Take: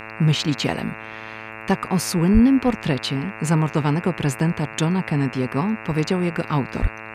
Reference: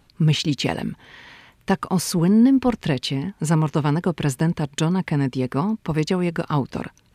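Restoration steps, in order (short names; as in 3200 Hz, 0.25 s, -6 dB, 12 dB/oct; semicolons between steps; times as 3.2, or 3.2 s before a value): de-hum 110 Hz, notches 25; de-plosive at 2.33/6.81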